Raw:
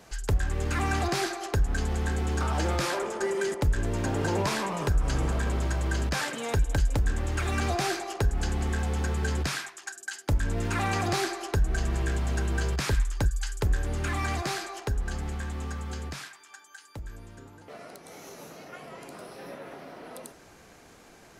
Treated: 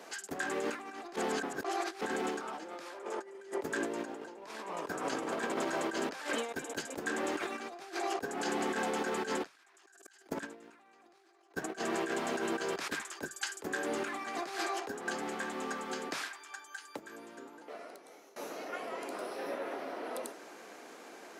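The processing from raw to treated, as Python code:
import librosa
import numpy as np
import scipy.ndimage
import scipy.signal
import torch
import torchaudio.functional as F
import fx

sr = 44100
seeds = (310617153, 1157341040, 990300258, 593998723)

y = fx.env_flatten(x, sr, amount_pct=100, at=(9.46, 11.79))
y = fx.edit(y, sr, fx.reverse_span(start_s=1.16, length_s=0.85),
    fx.fade_out_to(start_s=17.15, length_s=1.21, floor_db=-22.0), tone=tone)
y = scipy.signal.sosfilt(scipy.signal.butter(4, 270.0, 'highpass', fs=sr, output='sos'), y)
y = fx.high_shelf(y, sr, hz=3100.0, db=-5.5)
y = fx.over_compress(y, sr, threshold_db=-37.0, ratio=-0.5)
y = y * 10.0 ** (-1.5 / 20.0)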